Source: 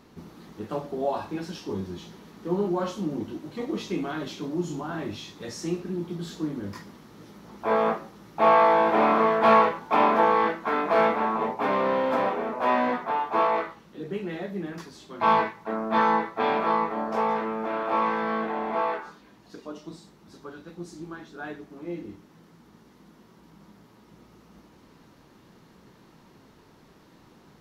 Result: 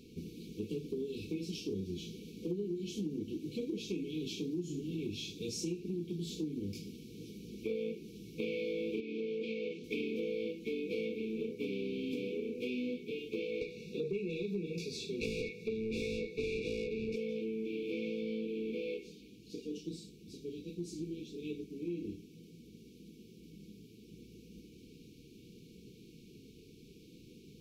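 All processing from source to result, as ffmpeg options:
ffmpeg -i in.wav -filter_complex "[0:a]asettb=1/sr,asplit=3[link_01][link_02][link_03];[link_01]atrim=end=9.004[link_04];[link_02]atrim=start=9:end=9.84,asetpts=PTS-STARTPTS,afade=type=in:duration=0.004:curve=qsin,afade=type=out:start_time=0.836:duration=0.004:curve=qsin,acompressor=threshold=-24dB:ratio=4:attack=3.2:release=140:knee=1:detection=peak,highpass=180,lowpass=6000[link_05];[link_03]atrim=start=9.836[link_06];[link_04][link_05]acrossfade=duration=0.004:curve1=hsin:curve2=qsin[link_07];[link_07][link_06]acrossfade=duration=0.004:curve1=qsin:curve2=hsin,asettb=1/sr,asplit=3[link_08][link_09][link_10];[link_08]atrim=end=13.614[link_11];[link_09]atrim=start=13.61:end=17.16,asetpts=PTS-STARTPTS,afade=type=in:duration=0.004:curve=qsin,afade=type=out:start_time=3.546:duration=0.004:curve=qsin,equalizer=frequency=300:width=2.9:gain=-14,asplit=2[link_12][link_13];[link_13]highpass=frequency=720:poles=1,volume=26dB,asoftclip=type=tanh:threshold=-8dB[link_14];[link_12][link_14]amix=inputs=2:normalize=0,lowpass=frequency=1100:poles=1,volume=-6dB,asuperstop=centerf=3100:order=4:qfactor=5.2[link_15];[link_10]atrim=start=17.156[link_16];[link_11][link_15]acrossfade=duration=0.004:curve1=hsin:curve2=qsin[link_17];[link_17][link_16]acrossfade=duration=0.004:curve1=qsin:curve2=hsin,afftfilt=real='re*(1-between(b*sr/4096,500,2200))':imag='im*(1-between(b*sr/4096,500,2200))':win_size=4096:overlap=0.75,acompressor=threshold=-35dB:ratio=5" out.wav

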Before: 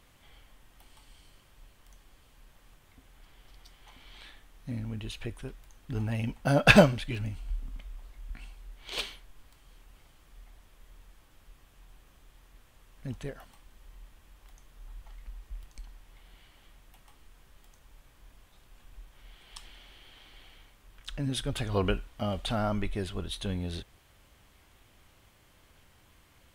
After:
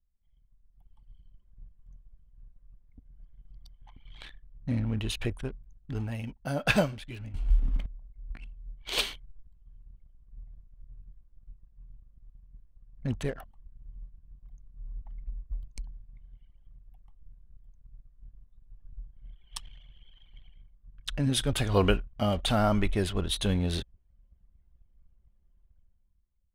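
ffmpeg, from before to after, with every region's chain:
ffmpeg -i in.wav -filter_complex "[0:a]asettb=1/sr,asplit=3[link_01][link_02][link_03];[link_01]atrim=end=7.344[link_04];[link_02]atrim=start=7.34:end=7.86,asetpts=PTS-STARTPTS,afade=type=in:duration=0.004:curve=qsin,afade=type=out:start_time=0.516:duration=0.004:curve=qsin,acontrast=79,lowshelf=frequency=440:gain=9[link_05];[link_03]atrim=start=7.856[link_06];[link_04][link_05]acrossfade=duration=0.004:curve1=hsin:curve2=qsin[link_07];[link_07][link_06]acrossfade=duration=0.004:curve1=qsin:curve2=hsin,anlmdn=0.01,highshelf=frequency=8400:gain=5,dynaudnorm=framelen=130:gausssize=13:maxgain=15dB,volume=-8.5dB" out.wav

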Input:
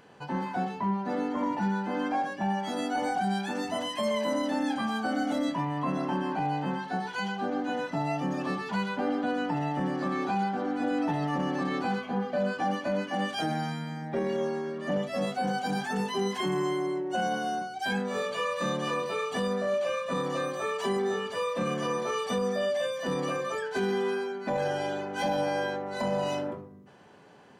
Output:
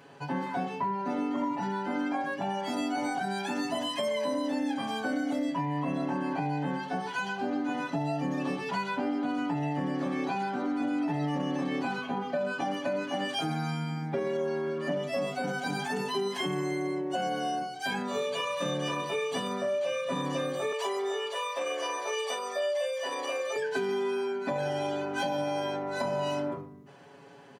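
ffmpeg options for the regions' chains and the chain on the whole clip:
ffmpeg -i in.wav -filter_complex "[0:a]asettb=1/sr,asplit=3[link_01][link_02][link_03];[link_01]atrim=end=20.724[link_04];[link_02]atrim=start=20.72:end=23.56,asetpts=PTS-STARTPTS,afade=type=in:duration=0.004:curve=qsin,afade=type=out:start_time=2.836:duration=0.004:curve=qsin,highpass=frequency=440:width=0.5412,highpass=frequency=440:width=1.3066,bandreject=frequency=1600:width=15[link_05];[link_03]atrim=start=23.556[link_06];[link_04][link_05]acrossfade=duration=0.004:curve1=hsin:curve2=qsin[link_07];[link_07][link_06]acrossfade=duration=0.004:curve1=qsin:curve2=hsin,highpass=98,aecho=1:1:7.2:0.89,acompressor=threshold=-27dB:ratio=6" out.wav

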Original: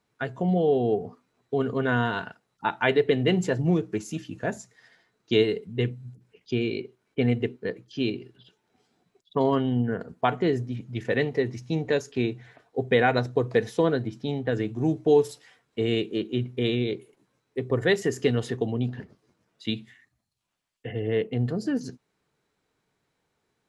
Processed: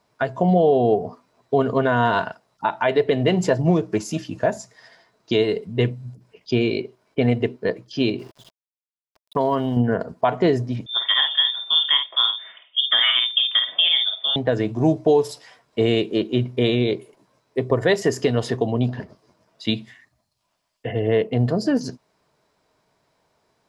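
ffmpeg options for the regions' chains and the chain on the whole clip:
ffmpeg -i in.wav -filter_complex "[0:a]asettb=1/sr,asplit=3[link_01][link_02][link_03];[link_01]atrim=end=8.194[link_04];[link_02]atrim=start=8.19:end=9.77,asetpts=PTS-STARTPTS,afade=type=in:duration=0.004:curve=qsin,afade=type=out:start_time=1.576:duration=0.004:curve=qsin,acompressor=threshold=-25dB:ratio=4:attack=3.2:release=140:knee=1:detection=peak,aeval=exprs='val(0)*gte(abs(val(0)),0.00224)':channel_layout=same[link_05];[link_03]atrim=start=9.766[link_06];[link_04][link_05]acrossfade=duration=0.004:curve1=hsin:curve2=qsin[link_07];[link_07][link_06]acrossfade=duration=0.004:curve1=qsin:curve2=hsin,asettb=1/sr,asplit=3[link_08][link_09][link_10];[link_08]atrim=end=10.864[link_11];[link_09]atrim=start=10.86:end=14.36,asetpts=PTS-STARTPTS,afade=type=in:duration=0.004:curve=qsin,afade=type=out:start_time=3.496:duration=0.004:curve=qsin,lowpass=frequency=3100:width_type=q:width=0.5098,lowpass=frequency=3100:width_type=q:width=0.6013,lowpass=frequency=3100:width_type=q:width=0.9,lowpass=frequency=3100:width_type=q:width=2.563,afreqshift=-3700,highpass=frequency=180:width=0.5412,highpass=frequency=180:width=1.3066,asplit=2[link_12][link_13];[link_13]adelay=50,volume=-6.5dB[link_14];[link_12][link_14]amix=inputs=2:normalize=0,atrim=end_sample=154350[link_15];[link_10]atrim=start=14.356[link_16];[link_11][link_15]acrossfade=duration=0.004:curve1=hsin:curve2=qsin[link_17];[link_17][link_16]acrossfade=duration=0.004:curve1=qsin:curve2=hsin,equalizer=frequency=630:width_type=o:width=0.33:gain=11,equalizer=frequency=1000:width_type=o:width=0.33:gain=8,equalizer=frequency=5000:width_type=o:width=0.33:gain=7,alimiter=limit=-14dB:level=0:latency=1:release=204,volume=6dB" out.wav

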